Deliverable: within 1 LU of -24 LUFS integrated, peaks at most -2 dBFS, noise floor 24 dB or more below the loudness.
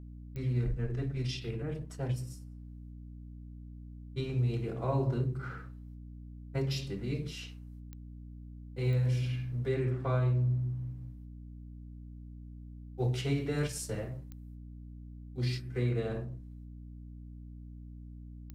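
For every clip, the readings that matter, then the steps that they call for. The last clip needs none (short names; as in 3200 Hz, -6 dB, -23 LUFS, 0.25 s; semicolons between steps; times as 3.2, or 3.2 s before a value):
clicks 5; hum 60 Hz; harmonics up to 300 Hz; hum level -44 dBFS; loudness -34.0 LUFS; peak -19.0 dBFS; loudness target -24.0 LUFS
-> de-click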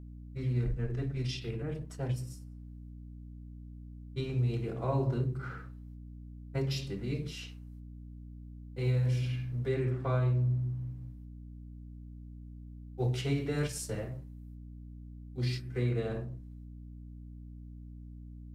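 clicks 0; hum 60 Hz; harmonics up to 300 Hz; hum level -44 dBFS
-> notches 60/120/180/240/300 Hz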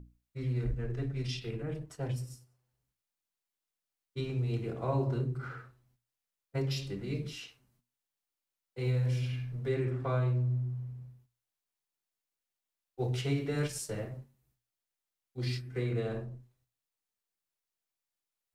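hum none; loudness -35.0 LUFS; peak -20.5 dBFS; loudness target -24.0 LUFS
-> gain +11 dB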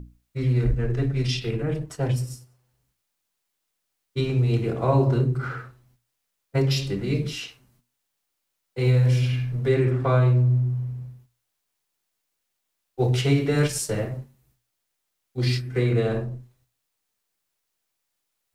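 loudness -24.0 LUFS; peak -9.5 dBFS; noise floor -79 dBFS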